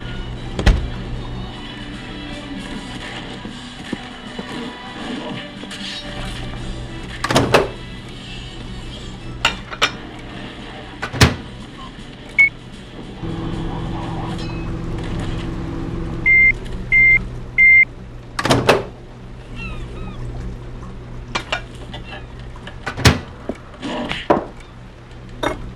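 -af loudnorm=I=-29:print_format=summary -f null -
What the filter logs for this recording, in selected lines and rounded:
Input Integrated:    -18.6 LUFS
Input True Peak:      -2.4 dBTP
Input LRA:            15.9 LU
Input Threshold:     -30.3 LUFS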